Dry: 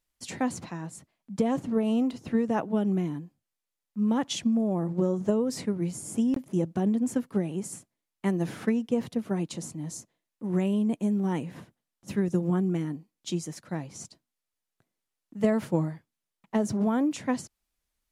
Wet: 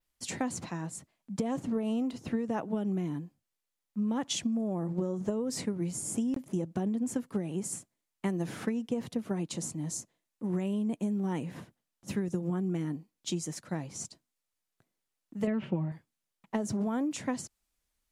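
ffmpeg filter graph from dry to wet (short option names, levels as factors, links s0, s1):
-filter_complex "[0:a]asettb=1/sr,asplit=3[s0][s1][s2];[s0]atrim=end=15.474[s3];[s1]atrim=start=15.47:end=15.92,asetpts=PTS-STARTPTS,afade=t=in:d=0.004:c=qsin,afade=t=out:st=0.446:d=0.004:c=qsin,lowpass=f=2800:t=q:w=5.8,tiltshelf=f=860:g=4.5,aecho=1:1:5.2:0.53,atrim=end_sample=19845[s4];[s2]atrim=start=15.916[s5];[s3][s4]acrossfade=d=0.004:c1=hsin:c2=qsin[s6];[s6][s5]acrossfade=d=0.004:c1=qsin:c2=hsin,adynamicequalizer=threshold=0.00251:dfrequency=7700:dqfactor=1.4:tfrequency=7700:tqfactor=1.4:attack=5:release=100:ratio=0.375:range=2:mode=boostabove:tftype=bell,acompressor=threshold=0.0398:ratio=6"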